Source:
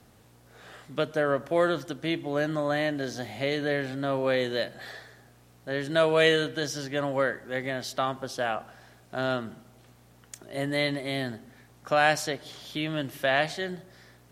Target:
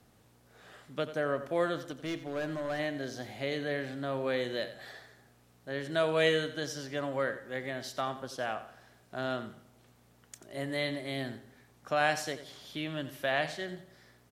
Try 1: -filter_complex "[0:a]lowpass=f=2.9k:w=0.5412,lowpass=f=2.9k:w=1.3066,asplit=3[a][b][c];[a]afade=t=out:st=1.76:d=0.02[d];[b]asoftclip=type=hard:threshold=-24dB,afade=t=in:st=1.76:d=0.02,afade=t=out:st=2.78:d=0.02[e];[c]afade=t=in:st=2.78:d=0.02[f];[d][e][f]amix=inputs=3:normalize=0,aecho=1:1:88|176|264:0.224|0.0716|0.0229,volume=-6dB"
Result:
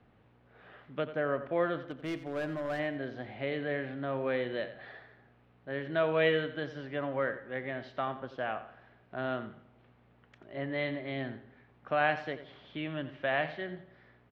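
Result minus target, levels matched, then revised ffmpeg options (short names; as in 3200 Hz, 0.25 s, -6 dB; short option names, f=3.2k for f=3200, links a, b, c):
4000 Hz band -5.5 dB
-filter_complex "[0:a]asplit=3[a][b][c];[a]afade=t=out:st=1.76:d=0.02[d];[b]asoftclip=type=hard:threshold=-24dB,afade=t=in:st=1.76:d=0.02,afade=t=out:st=2.78:d=0.02[e];[c]afade=t=in:st=2.78:d=0.02[f];[d][e][f]amix=inputs=3:normalize=0,aecho=1:1:88|176|264:0.224|0.0716|0.0229,volume=-6dB"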